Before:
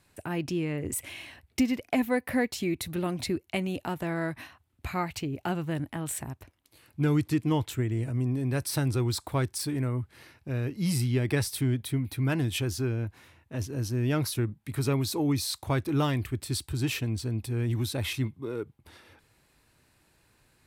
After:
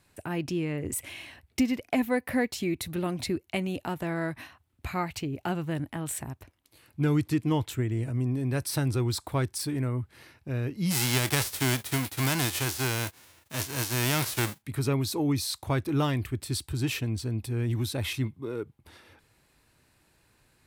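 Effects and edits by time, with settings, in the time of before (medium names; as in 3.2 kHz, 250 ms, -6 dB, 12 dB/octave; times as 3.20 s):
10.90–14.61 s: formants flattened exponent 0.3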